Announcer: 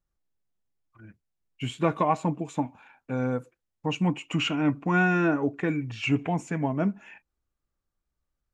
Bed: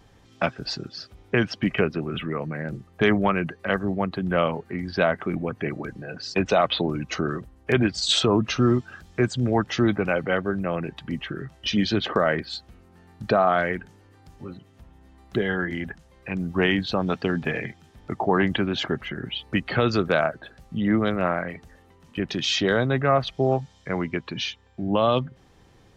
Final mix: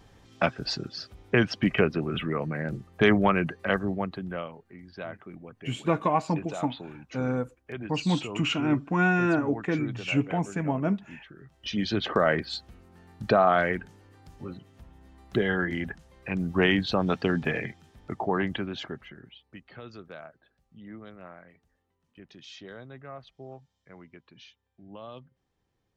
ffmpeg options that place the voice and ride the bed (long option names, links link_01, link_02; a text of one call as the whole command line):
ffmpeg -i stem1.wav -i stem2.wav -filter_complex "[0:a]adelay=4050,volume=-0.5dB[link_01];[1:a]volume=15.5dB,afade=type=out:start_time=3.6:duration=0.89:silence=0.149624,afade=type=in:start_time=11.38:duration=0.9:silence=0.158489,afade=type=out:start_time=17.38:duration=2.03:silence=0.0841395[link_02];[link_01][link_02]amix=inputs=2:normalize=0" out.wav